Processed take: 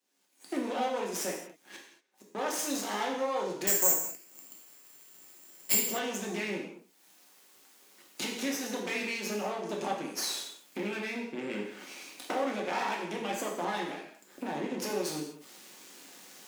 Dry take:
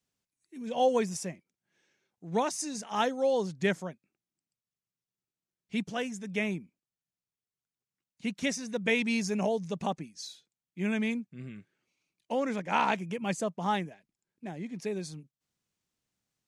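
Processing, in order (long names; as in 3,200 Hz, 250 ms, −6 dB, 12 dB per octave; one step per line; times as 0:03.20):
camcorder AGC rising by 47 dB per second
sine wavefolder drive 8 dB, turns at −8 dBFS
downward compressor 3 to 1, threshold −24 dBFS, peak gain reduction 10 dB
0:01.31–0:02.35: gate with flip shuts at −25 dBFS, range −35 dB
half-wave rectification
0:03.67–0:05.75: bad sample-rate conversion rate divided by 6×, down filtered, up zero stuff
high-pass filter 240 Hz 24 dB per octave
reverb whose tail is shaped and stops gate 260 ms falling, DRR −2 dB
level −7 dB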